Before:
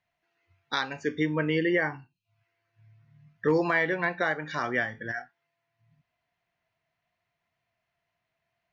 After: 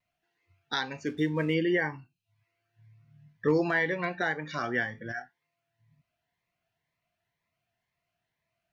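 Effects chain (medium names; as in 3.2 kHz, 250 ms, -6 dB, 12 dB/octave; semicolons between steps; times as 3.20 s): 1.06–1.54 s: hysteresis with a dead band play -50 dBFS; vibrato 0.79 Hz 23 cents; Shepard-style phaser rising 2 Hz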